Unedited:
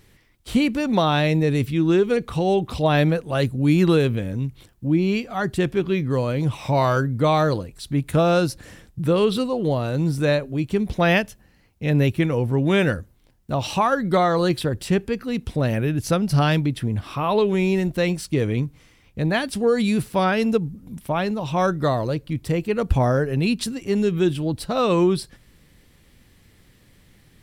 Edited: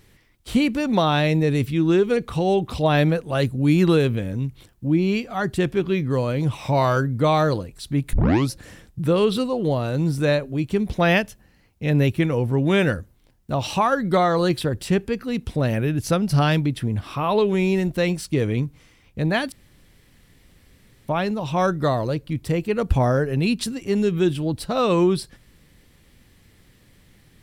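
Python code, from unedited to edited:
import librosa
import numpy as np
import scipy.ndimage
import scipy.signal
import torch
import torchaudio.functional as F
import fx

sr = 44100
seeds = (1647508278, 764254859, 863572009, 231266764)

y = fx.edit(x, sr, fx.tape_start(start_s=8.13, length_s=0.37),
    fx.room_tone_fill(start_s=19.52, length_s=1.56), tone=tone)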